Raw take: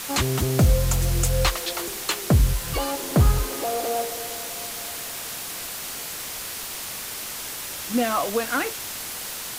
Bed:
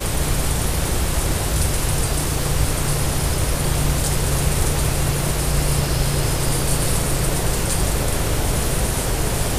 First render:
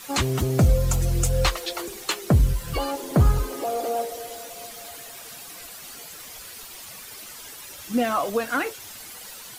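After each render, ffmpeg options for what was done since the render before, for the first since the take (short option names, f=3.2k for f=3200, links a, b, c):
-af "afftdn=nr=11:nf=-34"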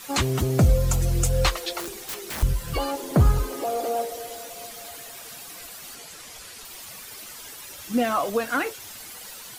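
-filter_complex "[0:a]asettb=1/sr,asplit=3[a][b][c];[a]atrim=end=1.804[d];[b]atrim=start=1.8:end=2.43,asetpts=PTS-STARTPTS,afade=t=in:d=0.004:c=qsin,afade=t=out:st=0.626:d=0.004:c=qsin,aeval=exprs='(mod(21.1*val(0)+1,2)-1)/21.1':c=same[e];[c]atrim=start=2.426[f];[d][e]acrossfade=d=0.004:c1=hsin:c2=qsin[g];[g][f]acrossfade=d=0.004:c1=qsin:c2=hsin,asettb=1/sr,asplit=3[h][i][j];[h]atrim=end=5.954[k];[i]atrim=start=5.95:end=6.65,asetpts=PTS-STARTPTS,afade=t=in:d=0.004:c=qsin,afade=t=out:st=0.696:d=0.004:c=qsin,lowpass=11k[l];[j]atrim=start=6.646[m];[k][l]acrossfade=d=0.004:c1=hsin:c2=qsin[n];[n][m]acrossfade=d=0.004:c1=qsin:c2=hsin"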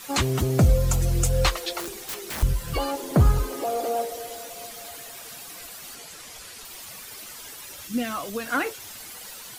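-filter_complex "[0:a]asettb=1/sr,asplit=3[a][b][c];[a]atrim=end=7.874[d];[b]atrim=start=7.87:end=8.46,asetpts=PTS-STARTPTS,afade=t=in:d=0.004:c=qsin,afade=t=out:st=0.586:d=0.004:c=qsin,equalizer=f=710:w=0.66:g=-10.5[e];[c]atrim=start=8.456[f];[d][e]acrossfade=d=0.004:c1=hsin:c2=qsin[g];[g][f]acrossfade=d=0.004:c1=qsin:c2=hsin"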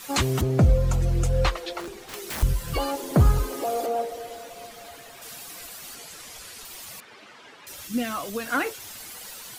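-filter_complex "[0:a]asettb=1/sr,asplit=3[a][b][c];[a]atrim=end=0.414[d];[b]atrim=start=0.41:end=2.14,asetpts=PTS-STARTPTS,afade=t=in:d=0.004:c=qsin,afade=t=out:st=1.726:d=0.004:c=qsin,lowpass=f=2.3k:p=1[e];[c]atrim=start=2.136[f];[d][e]acrossfade=d=0.004:c1=hsin:c2=qsin[g];[g][f]acrossfade=d=0.004:c1=qsin:c2=hsin,asettb=1/sr,asplit=3[h][i][j];[h]atrim=end=3.864[k];[i]atrim=start=3.86:end=5.22,asetpts=PTS-STARTPTS,afade=t=in:d=0.004:c=qsin,afade=t=out:st=1.356:d=0.004:c=qsin,highshelf=f=4.6k:g=-10.5[l];[j]atrim=start=5.216[m];[k][l]acrossfade=d=0.004:c1=hsin:c2=qsin[n];[n][m]acrossfade=d=0.004:c1=qsin:c2=hsin,asettb=1/sr,asplit=3[o][p][q];[o]atrim=end=7.004[r];[p]atrim=start=7:end=7.67,asetpts=PTS-STARTPTS,afade=t=in:d=0.004:c=qsin,afade=t=out:st=0.666:d=0.004:c=qsin,highpass=170,lowpass=2.6k[s];[q]atrim=start=7.666[t];[r][s]acrossfade=d=0.004:c1=hsin:c2=qsin[u];[u][t]acrossfade=d=0.004:c1=qsin:c2=hsin"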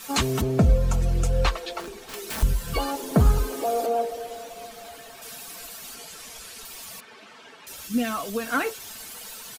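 -af "bandreject=f=2k:w=26,aecho=1:1:4.5:0.39"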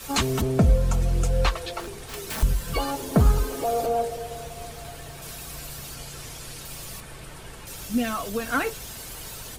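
-filter_complex "[1:a]volume=-22.5dB[a];[0:a][a]amix=inputs=2:normalize=0"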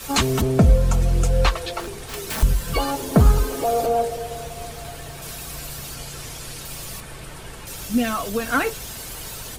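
-af "volume=4dB"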